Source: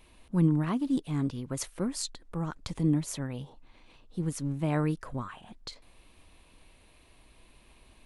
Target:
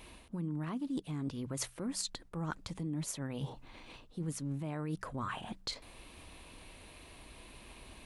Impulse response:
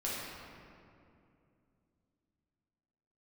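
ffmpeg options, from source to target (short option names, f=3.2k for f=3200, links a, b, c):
-af "alimiter=level_in=2dB:limit=-24dB:level=0:latency=1:release=180,volume=-2dB,highpass=f=40:p=1,areverse,acompressor=threshold=-42dB:ratio=6,areverse,bandreject=f=63.18:t=h:w=4,bandreject=f=126.36:t=h:w=4,bandreject=f=189.54:t=h:w=4,volume=7dB"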